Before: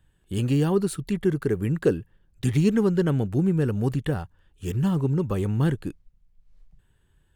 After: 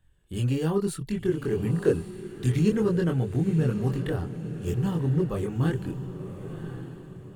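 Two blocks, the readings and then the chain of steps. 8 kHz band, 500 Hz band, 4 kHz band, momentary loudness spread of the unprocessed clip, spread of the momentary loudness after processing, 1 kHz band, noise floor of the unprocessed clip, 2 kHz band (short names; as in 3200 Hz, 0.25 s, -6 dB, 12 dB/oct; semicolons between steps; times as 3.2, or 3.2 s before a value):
-2.5 dB, -1.5 dB, -2.5 dB, 10 LU, 13 LU, -2.5 dB, -64 dBFS, -2.0 dB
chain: chorus voices 4, 0.65 Hz, delay 24 ms, depth 1.4 ms; diffused feedback echo 1.035 s, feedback 41%, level -10.5 dB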